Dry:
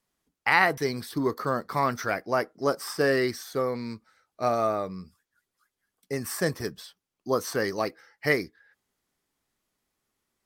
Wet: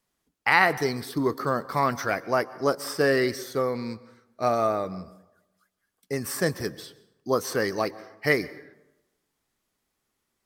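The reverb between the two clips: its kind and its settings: plate-style reverb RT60 0.97 s, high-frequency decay 0.55×, pre-delay 110 ms, DRR 18 dB; trim +1.5 dB

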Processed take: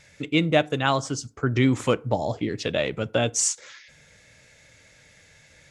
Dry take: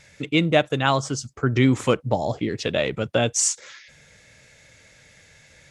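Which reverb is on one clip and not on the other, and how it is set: FDN reverb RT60 0.44 s, low-frequency decay 0.95×, high-frequency decay 0.55×, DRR 18.5 dB; trim -2 dB

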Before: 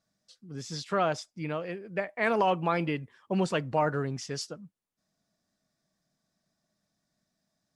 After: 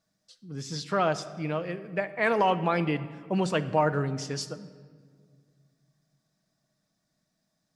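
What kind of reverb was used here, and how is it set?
simulated room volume 2800 m³, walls mixed, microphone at 0.56 m; trim +1.5 dB

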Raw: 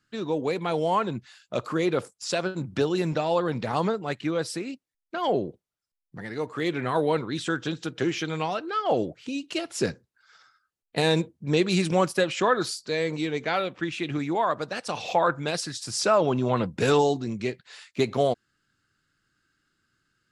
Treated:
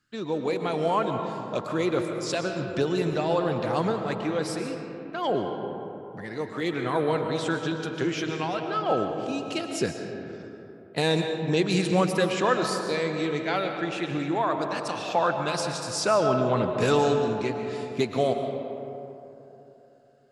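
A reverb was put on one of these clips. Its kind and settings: algorithmic reverb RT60 3.2 s, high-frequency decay 0.4×, pre-delay 85 ms, DRR 4.5 dB; trim -1.5 dB

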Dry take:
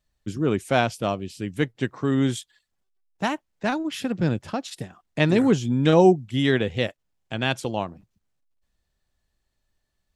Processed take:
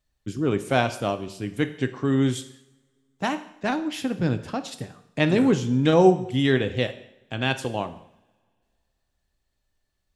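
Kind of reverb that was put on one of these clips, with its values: two-slope reverb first 0.69 s, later 2.3 s, from -25 dB, DRR 9 dB; trim -1 dB

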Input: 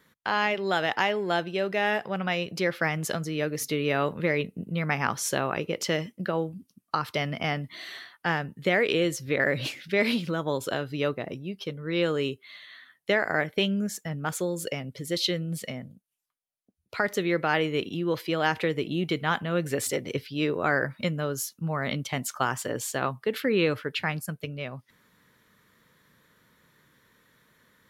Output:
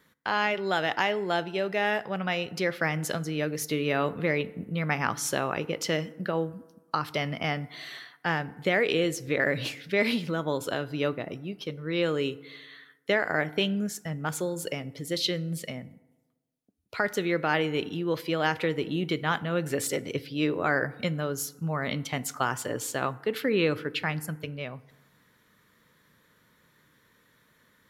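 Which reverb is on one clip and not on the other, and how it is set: FDN reverb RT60 1.2 s, high-frequency decay 0.45×, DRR 16.5 dB; trim -1 dB

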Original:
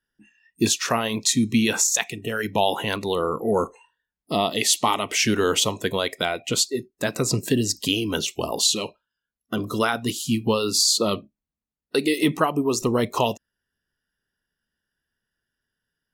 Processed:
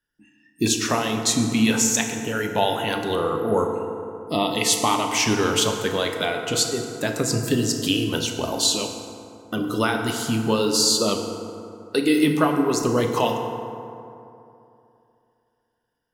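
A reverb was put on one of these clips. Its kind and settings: FDN reverb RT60 2.8 s, high-frequency decay 0.45×, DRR 3 dB; trim -1 dB

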